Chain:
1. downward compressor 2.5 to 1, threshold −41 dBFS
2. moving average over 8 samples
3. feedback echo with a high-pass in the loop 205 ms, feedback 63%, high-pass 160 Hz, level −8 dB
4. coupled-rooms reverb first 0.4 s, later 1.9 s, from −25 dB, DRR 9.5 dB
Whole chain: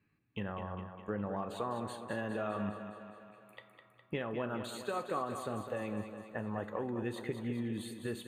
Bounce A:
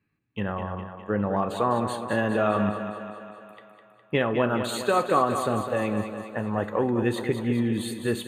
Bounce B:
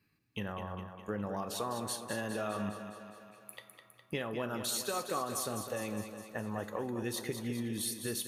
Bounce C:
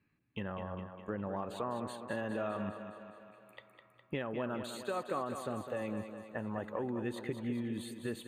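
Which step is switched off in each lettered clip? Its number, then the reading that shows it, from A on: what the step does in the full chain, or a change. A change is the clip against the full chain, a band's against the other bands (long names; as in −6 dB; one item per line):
1, average gain reduction 11.5 dB
2, 8 kHz band +15.5 dB
4, echo-to-direct ratio −4.0 dB to −6.0 dB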